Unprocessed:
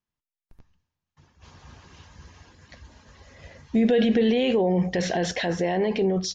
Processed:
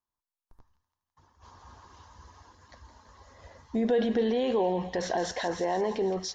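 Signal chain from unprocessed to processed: fifteen-band EQ 160 Hz -10 dB, 1000 Hz +10 dB, 2500 Hz -10 dB; thin delay 0.166 s, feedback 67%, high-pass 1800 Hz, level -10 dB; gain -4.5 dB

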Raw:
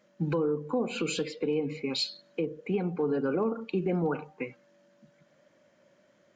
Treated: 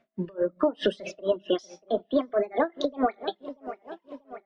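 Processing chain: speed glide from 112% -> 173%; LPF 3500 Hz 12 dB/oct; low shelf 77 Hz +8.5 dB; non-linear reverb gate 0.18 s falling, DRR 10.5 dB; AGC gain up to 15 dB; reverb removal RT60 1.3 s; on a send: dark delay 0.638 s, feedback 56%, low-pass 2200 Hz, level -19 dB; on the sum: compressor, threshold -15 dBFS, peak gain reduction 6 dB; in parallel at -3 dB: limiter -15 dBFS, peak gain reduction 7.5 dB; on the sum: dB-linear tremolo 4.6 Hz, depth 26 dB; gain -5.5 dB

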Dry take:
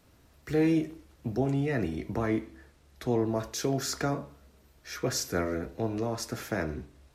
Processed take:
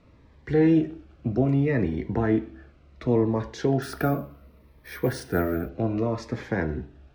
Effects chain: LPF 2500 Hz 12 dB/oct; 3.82–5.69 careless resampling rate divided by 3×, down filtered, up hold; cascading phaser falling 0.66 Hz; gain +6.5 dB

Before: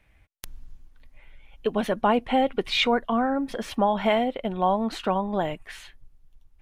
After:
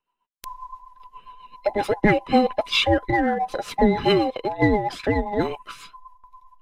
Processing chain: band inversion scrambler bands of 1000 Hz; gate with hold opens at -42 dBFS; rotary speaker horn 7.5 Hz; in parallel at -11.5 dB: backlash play -24.5 dBFS; on the sum: gain +4 dB

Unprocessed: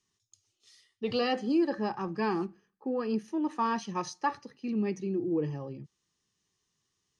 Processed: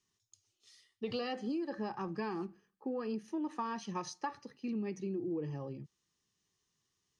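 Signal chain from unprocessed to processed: compressor 10:1, threshold -31 dBFS, peak gain reduction 10 dB; gain -2.5 dB

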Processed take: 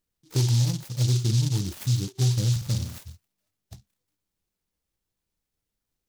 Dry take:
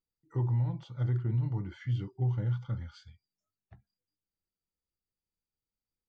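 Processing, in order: in parallel at 0 dB: compressor, threshold -36 dBFS, peak gain reduction 10 dB; 2.51–2.98 on the sum: flutter echo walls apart 8.9 m, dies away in 0.63 s; noise-modulated delay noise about 4900 Hz, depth 0.23 ms; gain +4.5 dB

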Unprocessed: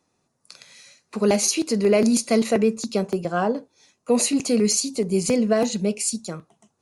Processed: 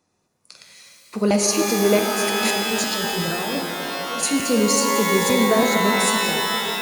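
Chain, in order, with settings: 1.99–4.23 negative-ratio compressor -30 dBFS, ratio -1; shimmer reverb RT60 3.8 s, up +12 st, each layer -2 dB, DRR 3 dB

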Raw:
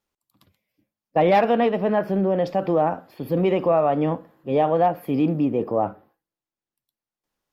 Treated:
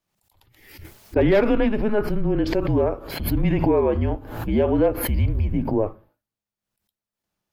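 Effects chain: frequency shift -210 Hz; backwards sustainer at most 65 dB/s

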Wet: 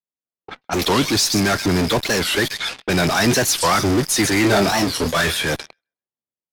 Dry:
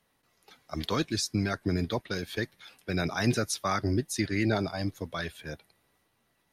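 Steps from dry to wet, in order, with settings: gate -57 dBFS, range -30 dB; HPF 190 Hz 6 dB/oct; on a send: thin delay 0.131 s, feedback 32%, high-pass 3800 Hz, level -9 dB; on the sum: AGC gain up to 4 dB; in parallel at -10 dB: fuzz box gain 50 dB, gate -52 dBFS; on the sum: low-pass opened by the level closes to 710 Hz, open at -21.5 dBFS; 4.41–5.46 doubler 25 ms -6 dB; record warp 45 rpm, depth 250 cents; gain +2.5 dB

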